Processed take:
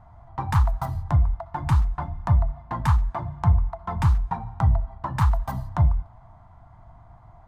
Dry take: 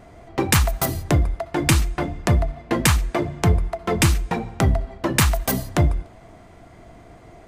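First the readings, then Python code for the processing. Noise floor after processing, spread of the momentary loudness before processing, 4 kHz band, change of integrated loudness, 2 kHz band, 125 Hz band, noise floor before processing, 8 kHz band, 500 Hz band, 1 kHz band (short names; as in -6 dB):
-50 dBFS, 6 LU, -19.5 dB, -3.0 dB, -13.0 dB, -1.0 dB, -46 dBFS, under -20 dB, -13.0 dB, -1.5 dB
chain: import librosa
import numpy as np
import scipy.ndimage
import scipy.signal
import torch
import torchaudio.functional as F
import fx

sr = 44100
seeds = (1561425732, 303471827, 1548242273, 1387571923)

y = fx.curve_eq(x, sr, hz=(120.0, 430.0, 910.0, 2500.0, 3600.0, 8300.0), db=(0, -26, 3, -21, -18, -25))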